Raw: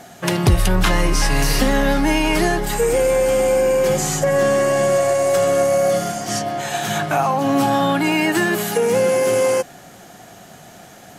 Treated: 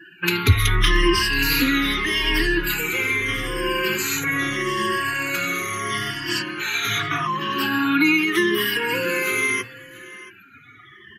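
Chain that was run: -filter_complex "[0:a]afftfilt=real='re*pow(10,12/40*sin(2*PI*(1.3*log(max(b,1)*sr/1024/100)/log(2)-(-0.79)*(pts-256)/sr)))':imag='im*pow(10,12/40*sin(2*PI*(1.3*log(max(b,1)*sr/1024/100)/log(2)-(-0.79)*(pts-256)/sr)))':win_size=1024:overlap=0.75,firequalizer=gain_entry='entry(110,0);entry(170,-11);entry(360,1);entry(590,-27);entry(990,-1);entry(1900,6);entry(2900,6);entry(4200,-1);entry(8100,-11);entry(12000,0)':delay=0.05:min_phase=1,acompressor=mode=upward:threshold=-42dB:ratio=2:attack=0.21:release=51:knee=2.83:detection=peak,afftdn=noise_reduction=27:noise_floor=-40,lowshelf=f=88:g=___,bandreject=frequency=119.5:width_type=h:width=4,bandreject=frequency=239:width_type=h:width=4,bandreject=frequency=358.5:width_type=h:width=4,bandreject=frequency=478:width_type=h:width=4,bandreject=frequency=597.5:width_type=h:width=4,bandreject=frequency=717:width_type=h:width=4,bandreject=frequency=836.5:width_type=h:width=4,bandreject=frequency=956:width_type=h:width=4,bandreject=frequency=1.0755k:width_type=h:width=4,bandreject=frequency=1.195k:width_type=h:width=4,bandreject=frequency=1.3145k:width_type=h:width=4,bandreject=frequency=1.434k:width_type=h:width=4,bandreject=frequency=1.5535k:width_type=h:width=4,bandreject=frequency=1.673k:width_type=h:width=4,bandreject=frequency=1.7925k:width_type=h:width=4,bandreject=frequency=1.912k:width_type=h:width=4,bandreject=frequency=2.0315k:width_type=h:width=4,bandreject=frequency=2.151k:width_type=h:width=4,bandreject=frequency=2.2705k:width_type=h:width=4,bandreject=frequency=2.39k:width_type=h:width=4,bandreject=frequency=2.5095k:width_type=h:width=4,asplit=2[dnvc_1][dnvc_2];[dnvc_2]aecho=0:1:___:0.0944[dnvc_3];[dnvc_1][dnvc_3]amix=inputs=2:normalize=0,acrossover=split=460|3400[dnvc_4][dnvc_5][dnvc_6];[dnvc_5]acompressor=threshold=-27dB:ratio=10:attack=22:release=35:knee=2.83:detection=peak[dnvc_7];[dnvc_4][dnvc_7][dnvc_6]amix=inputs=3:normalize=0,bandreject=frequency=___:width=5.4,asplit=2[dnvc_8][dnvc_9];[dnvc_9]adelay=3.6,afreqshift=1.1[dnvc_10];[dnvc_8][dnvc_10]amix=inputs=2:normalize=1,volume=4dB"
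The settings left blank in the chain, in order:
-8, 676, 800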